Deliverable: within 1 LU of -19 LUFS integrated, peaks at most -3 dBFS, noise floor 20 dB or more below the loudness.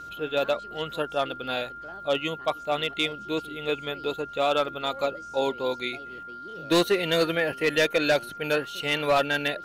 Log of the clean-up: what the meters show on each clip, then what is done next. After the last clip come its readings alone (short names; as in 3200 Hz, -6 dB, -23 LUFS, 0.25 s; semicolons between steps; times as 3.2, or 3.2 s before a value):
ticks 33/s; steady tone 1400 Hz; tone level -38 dBFS; loudness -26.5 LUFS; peak -14.0 dBFS; loudness target -19.0 LUFS
-> de-click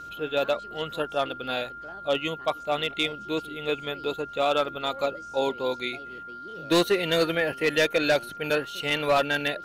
ticks 0.10/s; steady tone 1400 Hz; tone level -38 dBFS
-> notch 1400 Hz, Q 30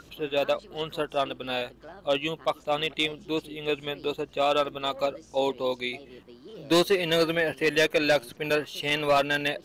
steady tone none; loudness -27.0 LUFS; peak -13.0 dBFS; loudness target -19.0 LUFS
-> gain +8 dB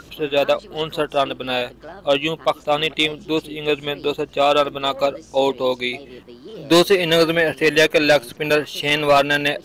loudness -19.0 LUFS; peak -5.0 dBFS; noise floor -45 dBFS